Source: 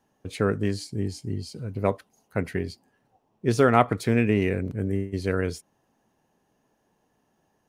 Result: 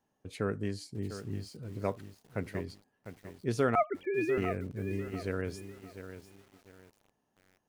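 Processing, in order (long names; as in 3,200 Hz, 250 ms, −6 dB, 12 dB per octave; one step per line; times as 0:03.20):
0:03.75–0:04.38: three sine waves on the formant tracks
feedback echo at a low word length 700 ms, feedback 35%, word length 7 bits, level −10.5 dB
level −9 dB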